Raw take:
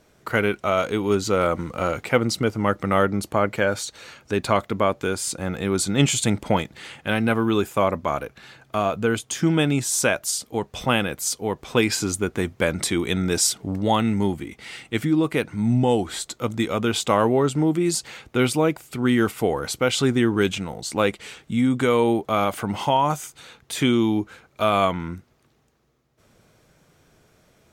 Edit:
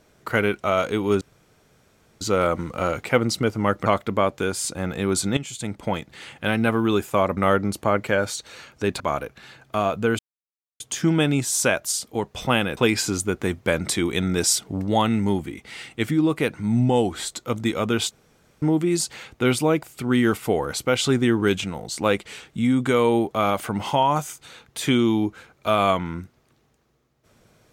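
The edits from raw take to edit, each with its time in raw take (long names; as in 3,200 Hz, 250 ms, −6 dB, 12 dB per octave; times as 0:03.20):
0:01.21: splice in room tone 1.00 s
0:02.86–0:04.49: move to 0:08.00
0:06.00–0:07.03: fade in, from −18 dB
0:09.19: splice in silence 0.61 s
0:11.16–0:11.71: remove
0:17.05–0:17.56: fill with room tone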